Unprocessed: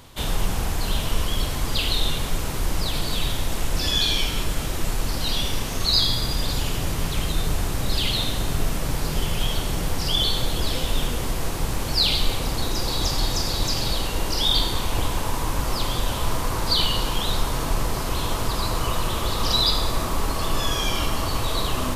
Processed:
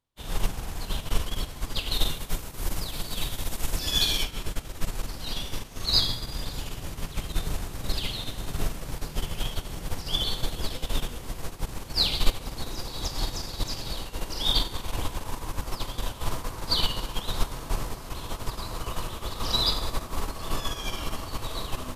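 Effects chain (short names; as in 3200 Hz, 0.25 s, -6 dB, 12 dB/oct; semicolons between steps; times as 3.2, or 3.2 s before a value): 1.91–4.22 high shelf 11000 Hz -> 6000 Hz +8 dB; upward expander 2.5:1, over -41 dBFS; gain +2.5 dB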